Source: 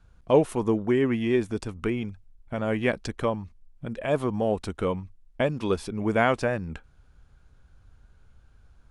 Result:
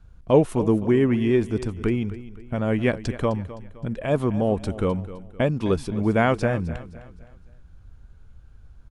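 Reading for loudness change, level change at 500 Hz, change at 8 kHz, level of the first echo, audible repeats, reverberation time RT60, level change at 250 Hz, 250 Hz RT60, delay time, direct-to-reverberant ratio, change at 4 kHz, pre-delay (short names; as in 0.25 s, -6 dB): +3.5 dB, +2.5 dB, 0.0 dB, -15.5 dB, 3, none, +4.5 dB, none, 0.258 s, none, 0.0 dB, none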